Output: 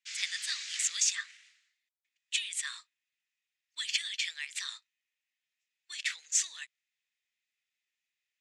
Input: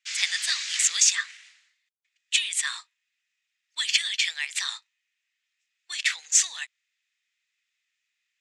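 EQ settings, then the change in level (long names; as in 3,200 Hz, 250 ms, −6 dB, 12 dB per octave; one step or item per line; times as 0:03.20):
parametric band 810 Hz −9.5 dB 0.65 octaves
mains-hum notches 50/100/150 Hz
−8.5 dB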